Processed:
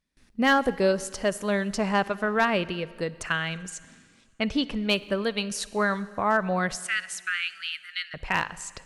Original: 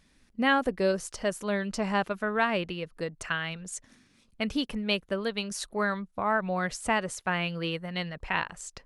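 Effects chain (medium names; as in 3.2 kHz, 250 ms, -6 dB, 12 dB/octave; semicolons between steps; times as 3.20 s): 3.70–4.90 s: low-pass 6.6 kHz 12 dB/octave; gate with hold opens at -54 dBFS; 6.82–8.14 s: steep high-pass 1.3 kHz 96 dB/octave; hard clipper -16.5 dBFS, distortion -24 dB; reverberation RT60 1.9 s, pre-delay 43 ms, DRR 17.5 dB; trim +3.5 dB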